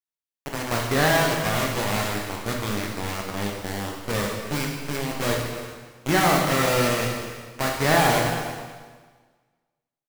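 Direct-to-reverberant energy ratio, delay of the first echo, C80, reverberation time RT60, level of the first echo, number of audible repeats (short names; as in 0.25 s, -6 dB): -1.5 dB, 0.322 s, 3.5 dB, 1.5 s, -15.5 dB, 1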